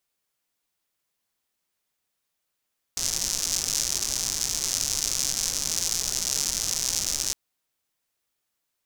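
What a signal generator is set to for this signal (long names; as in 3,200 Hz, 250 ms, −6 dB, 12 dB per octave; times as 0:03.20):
rain-like ticks over hiss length 4.36 s, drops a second 170, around 6,000 Hz, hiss −12 dB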